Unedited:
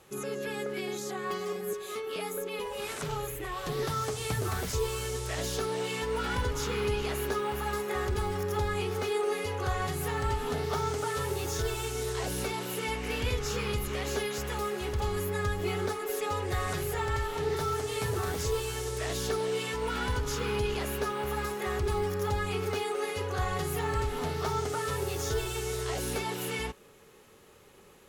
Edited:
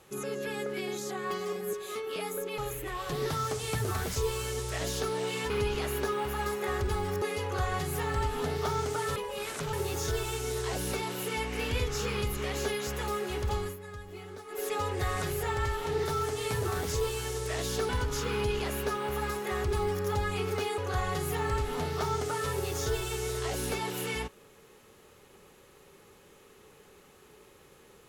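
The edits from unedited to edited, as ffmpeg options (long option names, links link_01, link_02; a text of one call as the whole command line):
ffmpeg -i in.wav -filter_complex "[0:a]asplit=10[link_01][link_02][link_03][link_04][link_05][link_06][link_07][link_08][link_09][link_10];[link_01]atrim=end=2.582[link_11];[link_02]atrim=start=3.148:end=6.072[link_12];[link_03]atrim=start=6.768:end=8.492[link_13];[link_04]atrim=start=9.298:end=11.242[link_14];[link_05]atrim=start=2.578:end=3.152[link_15];[link_06]atrim=start=11.238:end=15.28,asetpts=PTS-STARTPTS,afade=type=out:start_time=3.752:duration=0.29:curve=qsin:silence=0.223872[link_16];[link_07]atrim=start=15.28:end=15.96,asetpts=PTS-STARTPTS,volume=-13dB[link_17];[link_08]atrim=start=15.96:end=19.402,asetpts=PTS-STARTPTS,afade=type=in:duration=0.29:curve=qsin:silence=0.223872[link_18];[link_09]atrim=start=20.038:end=22.932[link_19];[link_10]atrim=start=23.218[link_20];[link_11][link_12]acrossfade=duration=0.004:curve1=hsin:curve2=hsin[link_21];[link_21][link_13]acrossfade=duration=0.004:curve1=hsin:curve2=hsin[link_22];[link_22][link_14]acrossfade=duration=0.004:curve1=hsin:curve2=hsin[link_23];[link_23][link_15]acrossfade=duration=0.004:curve1=hsin:curve2=hsin[link_24];[link_16][link_17][link_18]concat=n=3:v=0:a=1[link_25];[link_24][link_25]acrossfade=duration=0.004:curve1=hsin:curve2=hsin[link_26];[link_26][link_19]acrossfade=duration=0.004:curve1=hsin:curve2=hsin[link_27];[link_27][link_20]acrossfade=duration=0.004:curve1=hsin:curve2=hsin" out.wav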